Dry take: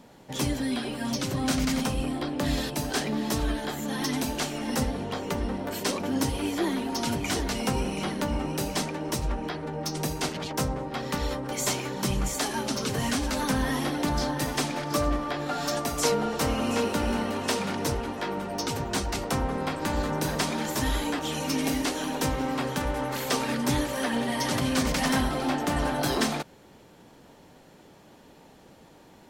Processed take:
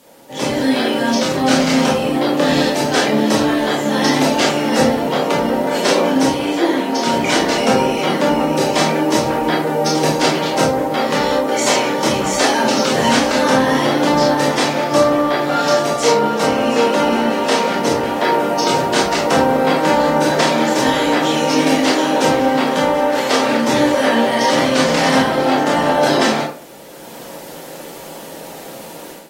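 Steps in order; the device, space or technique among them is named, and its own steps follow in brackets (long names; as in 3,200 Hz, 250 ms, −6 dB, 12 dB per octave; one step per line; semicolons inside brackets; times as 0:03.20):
filmed off a television (band-pass filter 230–7,300 Hz; parametric band 560 Hz +8 dB 0.37 octaves; convolution reverb RT60 0.45 s, pre-delay 21 ms, DRR −3 dB; white noise bed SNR 28 dB; automatic gain control gain up to 14 dB; level −1.5 dB; AAC 48 kbit/s 44,100 Hz)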